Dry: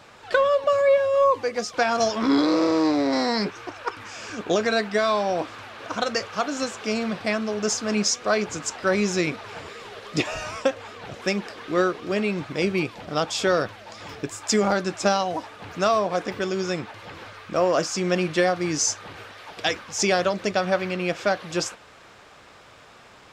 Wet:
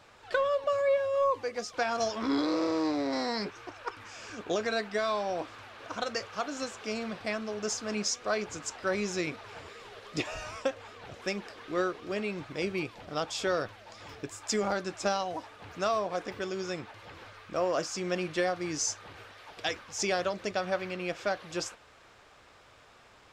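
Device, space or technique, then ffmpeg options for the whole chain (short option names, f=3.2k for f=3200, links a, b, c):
low shelf boost with a cut just above: -af "lowshelf=f=69:g=7,equalizer=f=180:t=o:w=1:g=-4,volume=-8dB"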